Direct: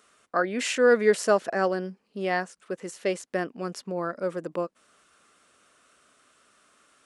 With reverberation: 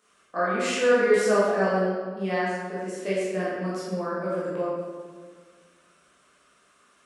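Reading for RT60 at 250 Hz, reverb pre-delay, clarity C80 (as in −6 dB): 2.0 s, 13 ms, 0.5 dB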